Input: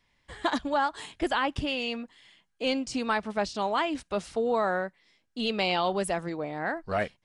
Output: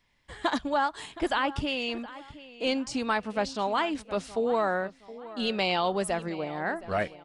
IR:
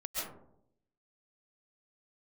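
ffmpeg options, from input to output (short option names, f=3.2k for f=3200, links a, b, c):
-filter_complex "[0:a]asplit=2[a][b];[b]adelay=719,lowpass=f=3.5k:p=1,volume=-16.5dB,asplit=2[c][d];[d]adelay=719,lowpass=f=3.5k:p=1,volume=0.39,asplit=2[e][f];[f]adelay=719,lowpass=f=3.5k:p=1,volume=0.39[g];[a][c][e][g]amix=inputs=4:normalize=0"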